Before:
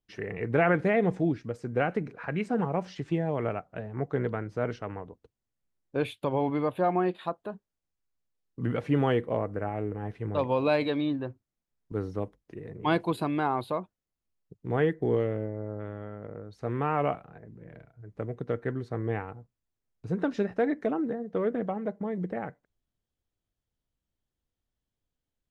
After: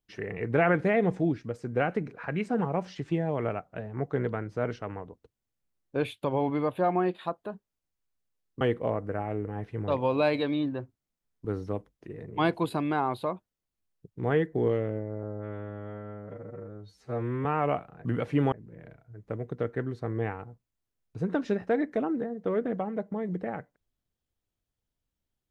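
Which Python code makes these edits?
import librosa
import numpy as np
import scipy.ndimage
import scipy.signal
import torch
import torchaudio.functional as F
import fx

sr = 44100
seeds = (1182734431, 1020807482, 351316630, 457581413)

y = fx.edit(x, sr, fx.move(start_s=8.61, length_s=0.47, to_s=17.41),
    fx.stretch_span(start_s=15.7, length_s=1.11, factor=2.0), tone=tone)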